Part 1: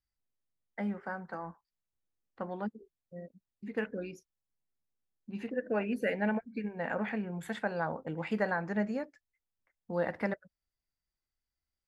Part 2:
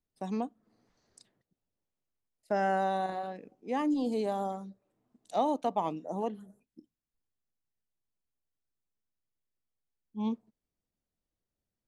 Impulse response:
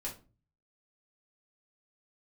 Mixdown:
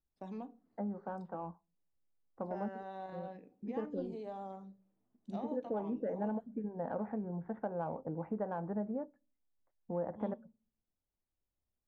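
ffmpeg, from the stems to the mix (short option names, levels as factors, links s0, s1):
-filter_complex "[0:a]lowpass=f=1000:w=0.5412,lowpass=f=1000:w=1.3066,acompressor=threshold=0.02:ratio=3,crystalizer=i=3:c=0,volume=0.891,asplit=3[s0][s1][s2];[s1]volume=0.0841[s3];[1:a]acompressor=threshold=0.0224:ratio=3,volume=0.335,asplit=2[s4][s5];[s5]volume=0.422[s6];[s2]apad=whole_len=523750[s7];[s4][s7]sidechaincompress=threshold=0.01:ratio=8:attack=44:release=830[s8];[2:a]atrim=start_sample=2205[s9];[s3][s6]amix=inputs=2:normalize=0[s10];[s10][s9]afir=irnorm=-1:irlink=0[s11];[s0][s8][s11]amix=inputs=3:normalize=0,adynamicsmooth=sensitivity=7:basefreq=3700"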